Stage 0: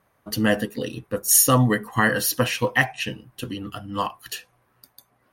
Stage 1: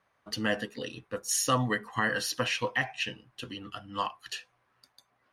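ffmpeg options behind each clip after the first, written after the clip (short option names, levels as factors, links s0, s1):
-filter_complex "[0:a]lowpass=5800,tiltshelf=f=640:g=-5,acrossover=split=630[s0][s1];[s1]alimiter=limit=0.316:level=0:latency=1:release=111[s2];[s0][s2]amix=inputs=2:normalize=0,volume=0.422"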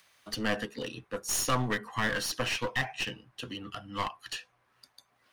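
-filter_complex "[0:a]acrossover=split=160|2700[s0][s1][s2];[s2]acompressor=mode=upward:threshold=0.00282:ratio=2.5[s3];[s0][s1][s3]amix=inputs=3:normalize=0,aeval=exprs='clip(val(0),-1,0.02)':c=same,volume=1.12"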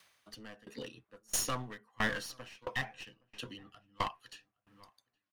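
-filter_complex "[0:a]asplit=2[s0][s1];[s1]adelay=818,lowpass=f=1400:p=1,volume=0.112,asplit=2[s2][s3];[s3]adelay=818,lowpass=f=1400:p=1,volume=0.26[s4];[s0][s2][s4]amix=inputs=3:normalize=0,aeval=exprs='val(0)*pow(10,-28*if(lt(mod(1.5*n/s,1),2*abs(1.5)/1000),1-mod(1.5*n/s,1)/(2*abs(1.5)/1000),(mod(1.5*n/s,1)-2*abs(1.5)/1000)/(1-2*abs(1.5)/1000))/20)':c=same"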